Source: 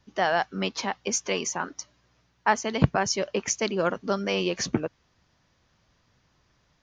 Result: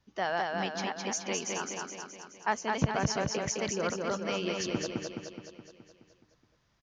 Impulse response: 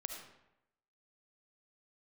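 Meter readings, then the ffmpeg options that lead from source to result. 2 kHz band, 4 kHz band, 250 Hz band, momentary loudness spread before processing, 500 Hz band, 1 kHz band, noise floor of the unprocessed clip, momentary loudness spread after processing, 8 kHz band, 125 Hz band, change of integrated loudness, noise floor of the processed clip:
−5.0 dB, −5.0 dB, −5.0 dB, 7 LU, −5.5 dB, −5.0 dB, −68 dBFS, 13 LU, −5.0 dB, −5.0 dB, −5.5 dB, −71 dBFS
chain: -af "aecho=1:1:211|422|633|844|1055|1266|1477|1688:0.708|0.404|0.23|0.131|0.0747|0.0426|0.0243|0.0138,volume=-7.5dB"

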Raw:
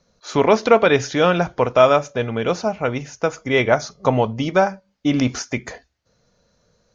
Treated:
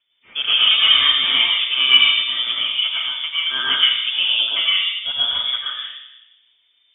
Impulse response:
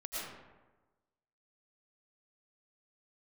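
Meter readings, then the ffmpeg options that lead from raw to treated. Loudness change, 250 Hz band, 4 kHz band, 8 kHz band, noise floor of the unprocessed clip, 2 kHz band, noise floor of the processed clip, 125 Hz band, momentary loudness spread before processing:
+4.0 dB, below −20 dB, +20.0 dB, can't be measured, −66 dBFS, +4.0 dB, −62 dBFS, below −25 dB, 10 LU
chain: -filter_complex "[0:a]aeval=exprs='0.841*(cos(1*acos(clip(val(0)/0.841,-1,1)))-cos(1*PI/2))+0.106*(cos(2*acos(clip(val(0)/0.841,-1,1)))-cos(2*PI/2))+0.0211*(cos(4*acos(clip(val(0)/0.841,-1,1)))-cos(4*PI/2))':channel_layout=same[link_01];[1:a]atrim=start_sample=2205[link_02];[link_01][link_02]afir=irnorm=-1:irlink=0,lowpass=frequency=3100:width_type=q:width=0.5098,lowpass=frequency=3100:width_type=q:width=0.6013,lowpass=frequency=3100:width_type=q:width=0.9,lowpass=frequency=3100:width_type=q:width=2.563,afreqshift=-3600,volume=-2dB"

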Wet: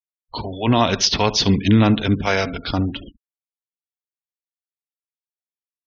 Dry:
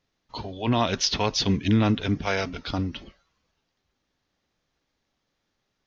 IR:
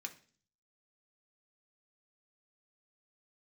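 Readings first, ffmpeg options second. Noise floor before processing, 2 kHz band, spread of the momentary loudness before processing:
−78 dBFS, +6.5 dB, 15 LU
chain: -filter_complex "[0:a]asplit=2[link_01][link_02];[link_02]adelay=71,lowpass=frequency=4200:poles=1,volume=-16dB,asplit=2[link_03][link_04];[link_04]adelay=71,lowpass=frequency=4200:poles=1,volume=0.43,asplit=2[link_05][link_06];[link_06]adelay=71,lowpass=frequency=4200:poles=1,volume=0.43,asplit=2[link_07][link_08];[link_08]adelay=71,lowpass=frequency=4200:poles=1,volume=0.43[link_09];[link_01][link_03][link_05][link_07][link_09]amix=inputs=5:normalize=0,afftfilt=real='re*gte(hypot(re,im),0.00891)':imag='im*gte(hypot(re,im),0.00891)':win_size=1024:overlap=0.75,volume=6.5dB"

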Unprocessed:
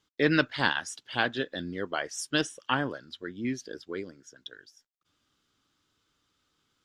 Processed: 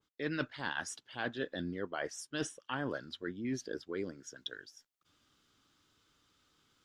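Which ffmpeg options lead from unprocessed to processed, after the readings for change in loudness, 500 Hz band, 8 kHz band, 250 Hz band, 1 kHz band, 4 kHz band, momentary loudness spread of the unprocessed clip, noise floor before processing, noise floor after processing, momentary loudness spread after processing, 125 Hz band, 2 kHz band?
−9.0 dB, −7.0 dB, −5.5 dB, −7.5 dB, −10.0 dB, −10.5 dB, 18 LU, −78 dBFS, −81 dBFS, 7 LU, −7.5 dB, −10.0 dB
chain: -af "areverse,acompressor=threshold=-36dB:ratio=6,areverse,adynamicequalizer=threshold=0.00158:dfrequency=2000:dqfactor=0.7:tfrequency=2000:tqfactor=0.7:attack=5:release=100:ratio=0.375:range=3:mode=cutabove:tftype=highshelf,volume=2.5dB"

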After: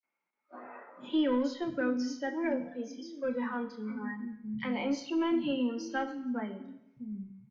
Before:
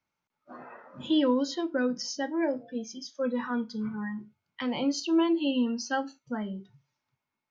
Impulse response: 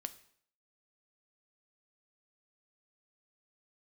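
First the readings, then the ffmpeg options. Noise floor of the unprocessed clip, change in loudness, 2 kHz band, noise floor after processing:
below −85 dBFS, −4.0 dB, −2.0 dB, −85 dBFS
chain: -filter_complex "[0:a]equalizer=frequency=2200:width=5.7:gain=9.5,acrossover=split=220|4100[link_01][link_02][link_03];[link_02]adelay=30[link_04];[link_01]adelay=690[link_05];[link_05][link_04][link_03]amix=inputs=3:normalize=0,acrossover=split=180|360|1300[link_06][link_07][link_08][link_09];[link_08]asoftclip=type=tanh:threshold=-30.5dB[link_10];[link_06][link_07][link_10][link_09]amix=inputs=4:normalize=0,aemphasis=mode=reproduction:type=75kf[link_11];[1:a]atrim=start_sample=2205,asetrate=28665,aresample=44100[link_12];[link_11][link_12]afir=irnorm=-1:irlink=0"

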